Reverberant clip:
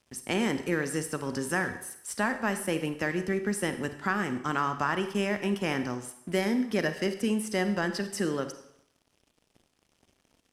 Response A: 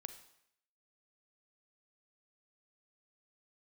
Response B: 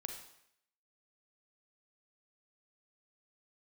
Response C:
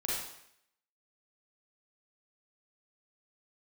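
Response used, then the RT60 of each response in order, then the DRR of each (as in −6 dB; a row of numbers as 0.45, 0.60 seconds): A; 0.70, 0.70, 0.70 seconds; 9.0, 3.5, −6.0 decibels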